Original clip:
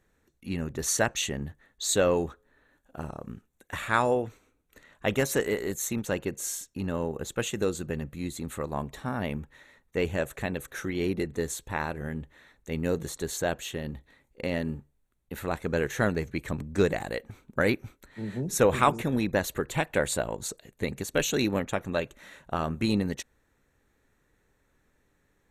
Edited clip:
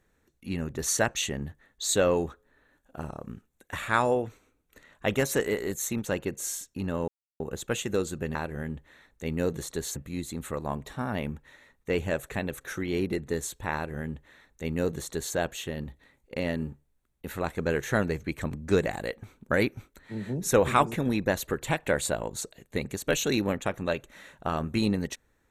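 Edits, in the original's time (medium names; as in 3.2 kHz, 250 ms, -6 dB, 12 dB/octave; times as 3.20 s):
7.08 s: insert silence 0.32 s
11.81–13.42 s: copy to 8.03 s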